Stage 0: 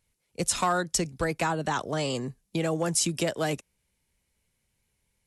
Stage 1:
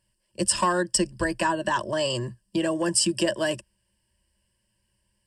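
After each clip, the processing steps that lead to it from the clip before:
EQ curve with evenly spaced ripples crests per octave 1.3, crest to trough 16 dB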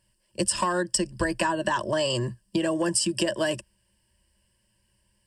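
downward compressor, threshold −25 dBFS, peak gain reduction 8 dB
level +3.5 dB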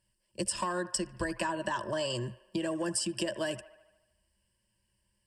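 delay with a band-pass on its return 75 ms, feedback 61%, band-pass 1,200 Hz, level −15 dB
level −7.5 dB

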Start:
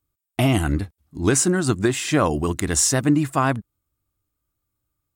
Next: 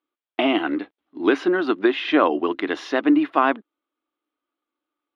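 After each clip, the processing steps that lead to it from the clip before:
elliptic band-pass filter 290–3,400 Hz, stop band 40 dB
level +3 dB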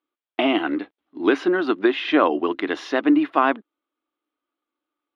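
no processing that can be heard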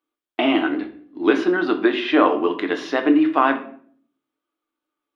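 rectangular room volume 63 cubic metres, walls mixed, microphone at 0.42 metres

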